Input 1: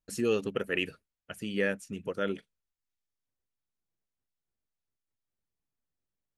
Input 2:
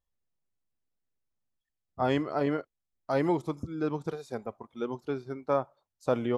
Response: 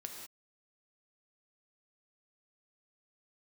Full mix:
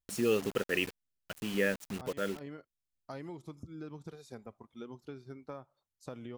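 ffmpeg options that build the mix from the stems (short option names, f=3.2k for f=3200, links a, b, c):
-filter_complex "[0:a]acrusher=bits=6:mix=0:aa=0.000001,volume=-1dB,afade=t=out:st=1.97:d=0.69:silence=0.354813,asplit=2[a][b];[1:a]equalizer=f=710:w=0.53:g=-8,acompressor=threshold=-38dB:ratio=6,volume=-3dB[c];[b]apad=whole_len=281162[d];[c][d]sidechaincompress=threshold=-46dB:ratio=8:attack=7.8:release=112[e];[a][e]amix=inputs=2:normalize=0"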